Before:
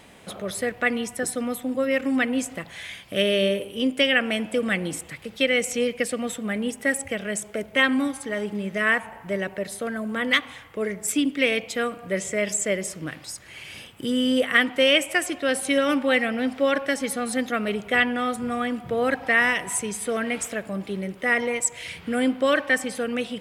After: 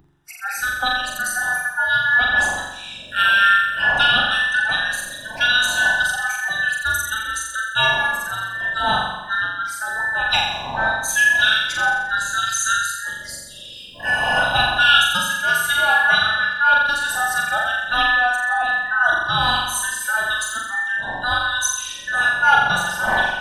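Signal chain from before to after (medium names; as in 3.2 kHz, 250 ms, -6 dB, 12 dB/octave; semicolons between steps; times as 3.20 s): every band turned upside down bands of 2 kHz; wind noise 460 Hz -34 dBFS; spectral noise reduction 29 dB; resonant low shelf 570 Hz -11 dB, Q 3; on a send: flutter echo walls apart 7.4 m, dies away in 0.95 s; on the sum: trim +1 dB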